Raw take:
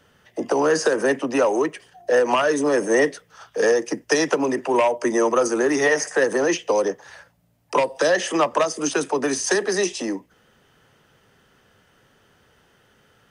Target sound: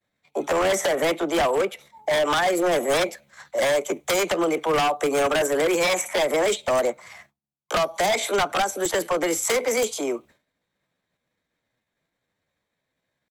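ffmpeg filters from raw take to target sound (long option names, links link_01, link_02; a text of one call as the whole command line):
ffmpeg -i in.wav -af "aeval=exprs='0.168*(abs(mod(val(0)/0.168+3,4)-2)-1)':channel_layout=same,agate=range=-33dB:threshold=-45dB:ratio=3:detection=peak,asetrate=53981,aresample=44100,atempo=0.816958" out.wav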